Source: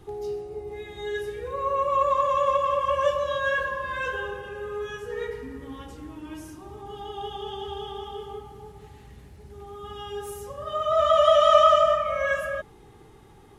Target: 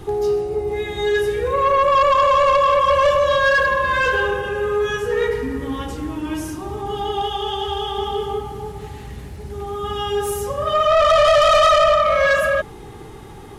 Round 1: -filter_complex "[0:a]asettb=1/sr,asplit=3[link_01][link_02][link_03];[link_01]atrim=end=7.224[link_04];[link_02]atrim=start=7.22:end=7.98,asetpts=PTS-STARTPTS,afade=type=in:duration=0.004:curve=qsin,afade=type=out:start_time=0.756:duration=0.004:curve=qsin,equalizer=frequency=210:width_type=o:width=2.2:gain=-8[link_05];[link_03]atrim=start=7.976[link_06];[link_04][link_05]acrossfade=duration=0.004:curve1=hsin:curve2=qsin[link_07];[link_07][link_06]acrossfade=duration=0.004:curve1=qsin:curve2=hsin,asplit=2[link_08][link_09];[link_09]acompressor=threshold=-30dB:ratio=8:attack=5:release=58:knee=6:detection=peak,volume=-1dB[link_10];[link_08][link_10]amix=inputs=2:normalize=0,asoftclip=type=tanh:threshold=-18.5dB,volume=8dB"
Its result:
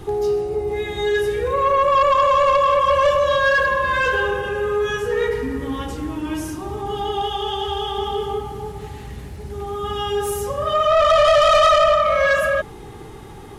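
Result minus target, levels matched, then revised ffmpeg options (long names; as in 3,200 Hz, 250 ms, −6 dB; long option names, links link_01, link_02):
downward compressor: peak gain reduction +5.5 dB
-filter_complex "[0:a]asettb=1/sr,asplit=3[link_01][link_02][link_03];[link_01]atrim=end=7.224[link_04];[link_02]atrim=start=7.22:end=7.98,asetpts=PTS-STARTPTS,afade=type=in:duration=0.004:curve=qsin,afade=type=out:start_time=0.756:duration=0.004:curve=qsin,equalizer=frequency=210:width_type=o:width=2.2:gain=-8[link_05];[link_03]atrim=start=7.976[link_06];[link_04][link_05]acrossfade=duration=0.004:curve1=hsin:curve2=qsin[link_07];[link_07][link_06]acrossfade=duration=0.004:curve1=qsin:curve2=hsin,asplit=2[link_08][link_09];[link_09]acompressor=threshold=-23.5dB:ratio=8:attack=5:release=58:knee=6:detection=peak,volume=-1dB[link_10];[link_08][link_10]amix=inputs=2:normalize=0,asoftclip=type=tanh:threshold=-18.5dB,volume=8dB"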